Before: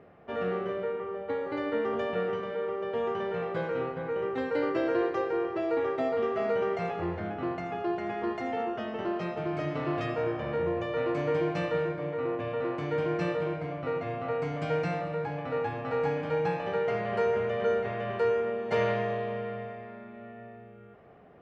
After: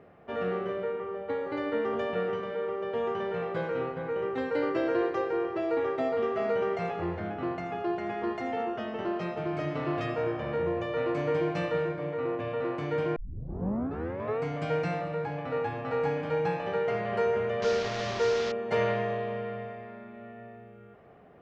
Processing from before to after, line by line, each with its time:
13.16 s: tape start 1.25 s
17.62–18.52 s: one-bit delta coder 32 kbps, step -28 dBFS

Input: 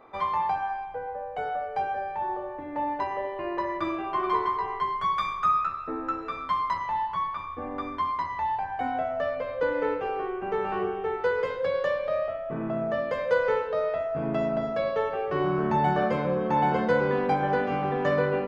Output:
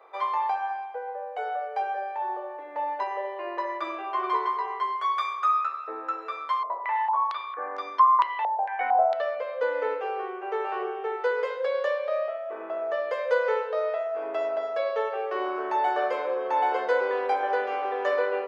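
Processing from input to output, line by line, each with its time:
6.63–9.22 s: step-sequenced low-pass 4.4 Hz 640–5500 Hz
whole clip: steep high-pass 400 Hz 36 dB/octave

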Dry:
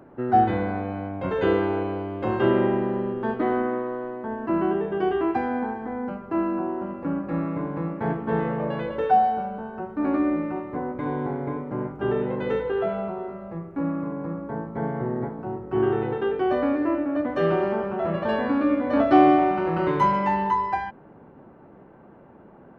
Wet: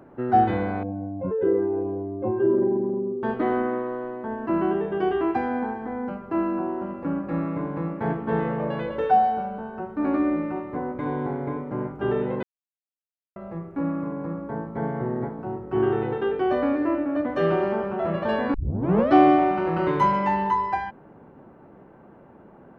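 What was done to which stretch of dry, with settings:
0.83–3.23 s: spectral contrast enhancement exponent 2.1
12.43–13.36 s: mute
18.54 s: tape start 0.58 s

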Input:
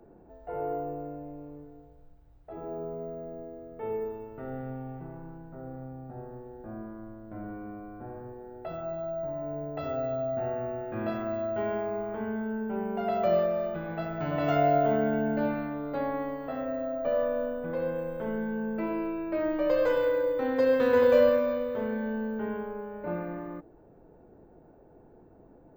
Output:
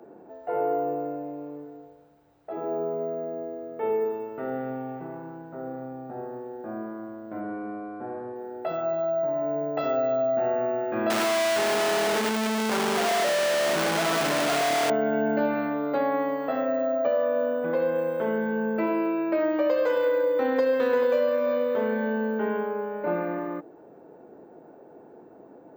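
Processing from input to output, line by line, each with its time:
7.40–8.36 s: distance through air 92 m
11.10–14.90 s: one-bit comparator
whole clip: high-pass 260 Hz 12 dB/octave; peaking EQ 15 kHz -9 dB 0.46 oct; compression 6:1, threshold -29 dBFS; trim +8.5 dB

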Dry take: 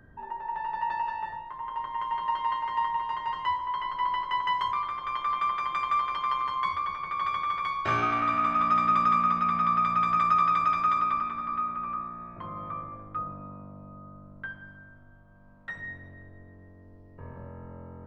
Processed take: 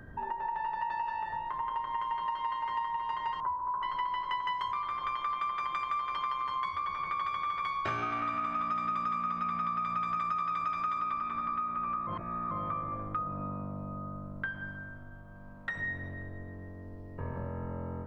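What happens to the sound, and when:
3.40–3.83 s: elliptic low-pass 1.5 kHz
12.07–12.51 s: reverse
whole clip: compression, threshold -38 dBFS; endings held to a fixed fall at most 130 dB/s; trim +6.5 dB

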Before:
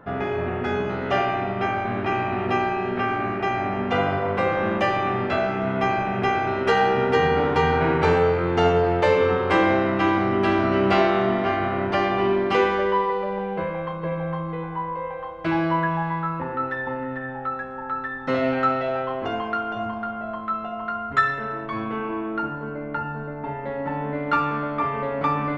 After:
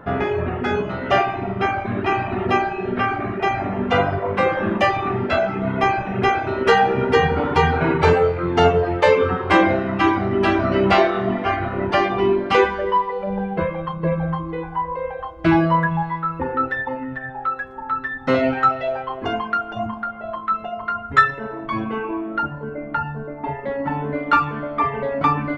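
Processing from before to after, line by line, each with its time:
13.27–16.83 s: bass shelf 390 Hz +4.5 dB
whole clip: reverb removal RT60 1.8 s; peaking EQ 61 Hz +5.5 dB 0.86 oct; trim +6 dB

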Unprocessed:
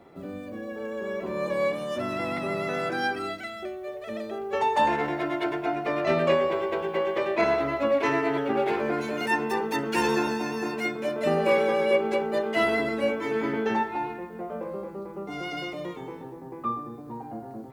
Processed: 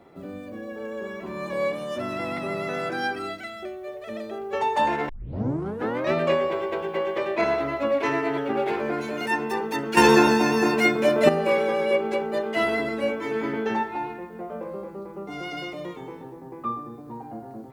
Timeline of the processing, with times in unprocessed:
1.07–1.53 s: peaking EQ 500 Hz -14.5 dB 0.33 oct
5.09 s: tape start 1.04 s
9.97–11.29 s: gain +9 dB

